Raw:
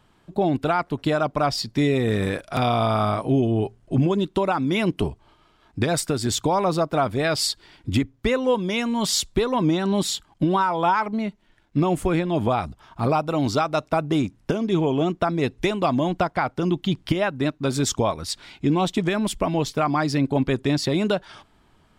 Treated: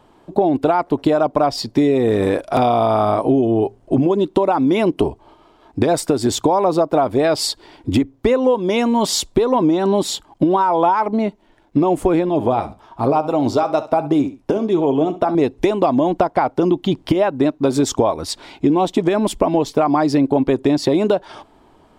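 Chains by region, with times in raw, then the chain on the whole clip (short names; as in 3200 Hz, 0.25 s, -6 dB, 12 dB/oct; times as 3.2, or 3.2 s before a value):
12.29–15.35 flange 1.1 Hz, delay 6.3 ms, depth 3.8 ms, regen +65% + feedback echo 67 ms, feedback 20%, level -16 dB
whole clip: band shelf 510 Hz +9.5 dB 2.3 oct; compressor, threshold -15 dBFS; gain +3 dB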